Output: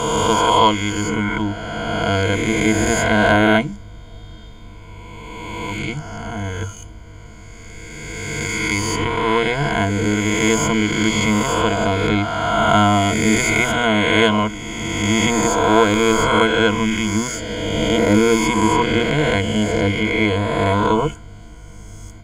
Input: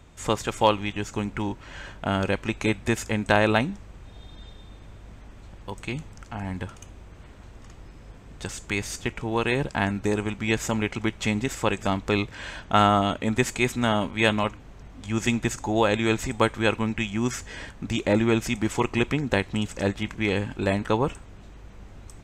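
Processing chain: spectral swells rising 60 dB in 2.61 s; ripple EQ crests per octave 1.8, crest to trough 16 dB

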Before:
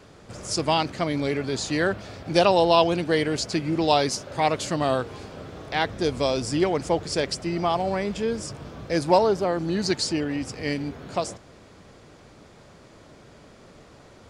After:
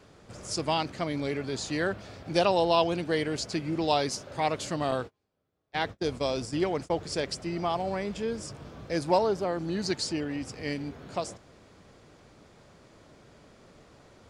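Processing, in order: 4.91–6.98 gate -29 dBFS, range -36 dB; gain -5.5 dB

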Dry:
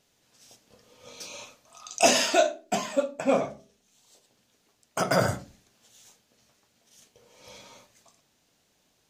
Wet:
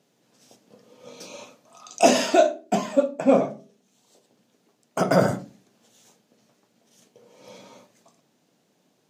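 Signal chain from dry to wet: HPF 150 Hz 24 dB/oct; tilt shelf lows +6 dB, about 860 Hz; gain +3 dB

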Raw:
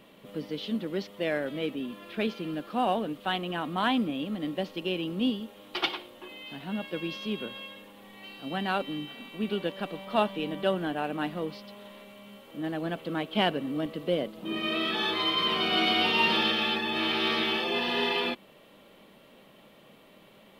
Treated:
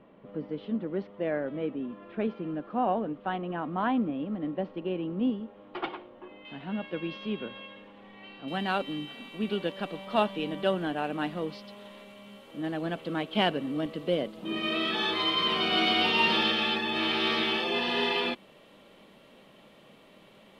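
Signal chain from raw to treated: LPF 1400 Hz 12 dB/oct, from 6.45 s 2700 Hz, from 8.48 s 10000 Hz

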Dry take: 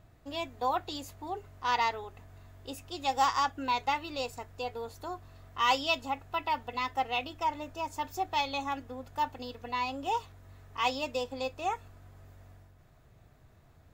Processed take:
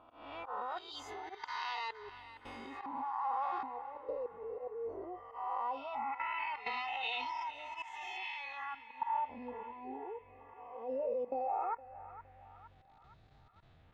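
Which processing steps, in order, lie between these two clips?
spectral swells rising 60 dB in 1.70 s; spectral noise reduction 15 dB; 7.82–8.92 passive tone stack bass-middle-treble 5-5-5; level quantiser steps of 18 dB; auto swell 0.279 s; compressor 6:1, threshold -48 dBFS, peak gain reduction 14.5 dB; LFO low-pass sine 0.17 Hz 420–4000 Hz; narrowing echo 0.464 s, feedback 65%, band-pass 1700 Hz, level -12 dB; 2.86–3.63 reverse; gain +9 dB

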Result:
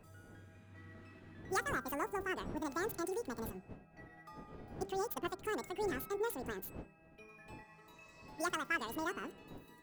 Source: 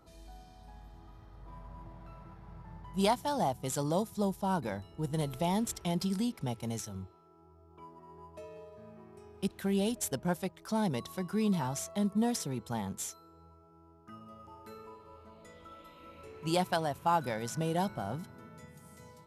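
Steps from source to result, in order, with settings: wind noise 170 Hz -47 dBFS; wide varispeed 1.96×; de-hum 196.7 Hz, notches 8; gain -6.5 dB

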